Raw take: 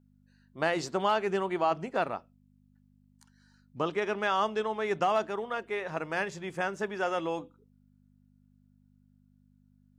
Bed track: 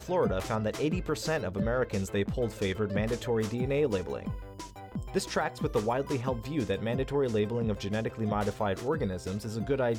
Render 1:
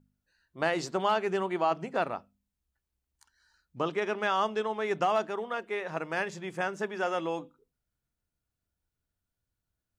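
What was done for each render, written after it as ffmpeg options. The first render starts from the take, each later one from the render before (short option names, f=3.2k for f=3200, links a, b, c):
-af "bandreject=f=50:t=h:w=4,bandreject=f=100:t=h:w=4,bandreject=f=150:t=h:w=4,bandreject=f=200:t=h:w=4,bandreject=f=250:t=h:w=4"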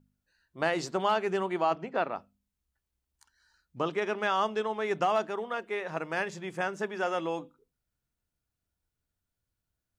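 -filter_complex "[0:a]asettb=1/sr,asplit=3[a][b][c];[a]atrim=end=1.754[d];[b]atrim=start=1.75:end=2.16,asetpts=PTS-STARTPTS,afade=t=in:d=0.004:c=qsin,afade=t=out:st=0.406:d=0.004:c=qsin,highpass=180,lowpass=4k[e];[c]atrim=start=2.156[f];[d][e]acrossfade=d=0.004:c1=hsin:c2=qsin[g];[g][f]acrossfade=d=0.004:c1=qsin:c2=hsin"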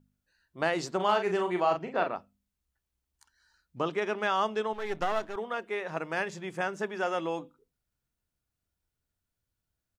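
-filter_complex "[0:a]asplit=3[a][b][c];[a]afade=t=out:st=0.99:d=0.02[d];[b]asplit=2[e][f];[f]adelay=39,volume=-6dB[g];[e][g]amix=inputs=2:normalize=0,afade=t=in:st=0.99:d=0.02,afade=t=out:st=2.14:d=0.02[h];[c]afade=t=in:st=2.14:d=0.02[i];[d][h][i]amix=inputs=3:normalize=0,asettb=1/sr,asplit=3[j][k][l];[j]atrim=end=4.734[m];[k]atrim=start=4.73:end=5.36,asetpts=PTS-STARTPTS,afade=t=in:d=0.004:c=qsin,afade=t=out:st=0.626:d=0.004:c=qsin,aeval=exprs='if(lt(val(0),0),0.251*val(0),val(0))':c=same[n];[l]atrim=start=5.356[o];[m][n]acrossfade=d=0.004:c1=hsin:c2=qsin[p];[p][o]acrossfade=d=0.004:c1=qsin:c2=hsin"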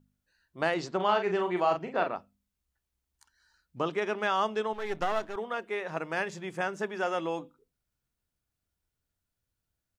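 -filter_complex "[0:a]asettb=1/sr,asplit=3[a][b][c];[a]atrim=end=0.744[d];[b]atrim=start=0.74:end=1.57,asetpts=PTS-STARTPTS,afade=t=in:d=0.004:c=qsin,afade=t=out:st=0.826:d=0.004:c=qsin,lowpass=5k[e];[c]atrim=start=1.566[f];[d][e]acrossfade=d=0.004:c1=hsin:c2=qsin[g];[g][f]acrossfade=d=0.004:c1=qsin:c2=hsin"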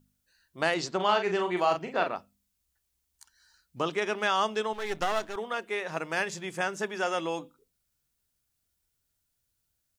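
-af "highshelf=f=3.1k:g=10.5"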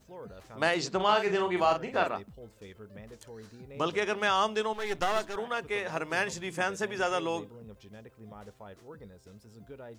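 -filter_complex "[1:a]volume=-18dB[a];[0:a][a]amix=inputs=2:normalize=0"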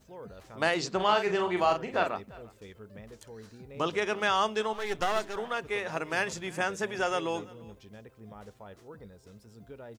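-af "aecho=1:1:346:0.075"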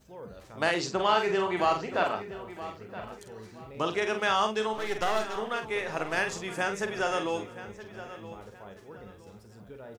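-filter_complex "[0:a]asplit=2[a][b];[b]adelay=46,volume=-7.5dB[c];[a][c]amix=inputs=2:normalize=0,asplit=2[d][e];[e]adelay=971,lowpass=f=4.2k:p=1,volume=-14dB,asplit=2[f][g];[g]adelay=971,lowpass=f=4.2k:p=1,volume=0.31,asplit=2[h][i];[i]adelay=971,lowpass=f=4.2k:p=1,volume=0.31[j];[d][f][h][j]amix=inputs=4:normalize=0"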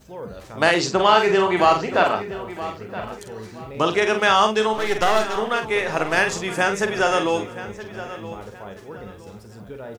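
-af "volume=9.5dB,alimiter=limit=-3dB:level=0:latency=1"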